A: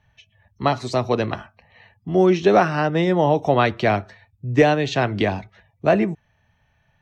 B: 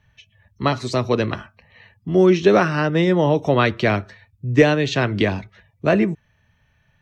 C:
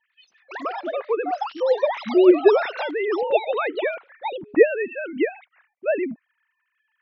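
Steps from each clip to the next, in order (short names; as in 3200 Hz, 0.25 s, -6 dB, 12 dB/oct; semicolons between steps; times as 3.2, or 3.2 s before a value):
bell 760 Hz -8.5 dB 0.51 oct; gain +2.5 dB
sine-wave speech; echoes that change speed 93 ms, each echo +6 st, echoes 2, each echo -6 dB; gain -3.5 dB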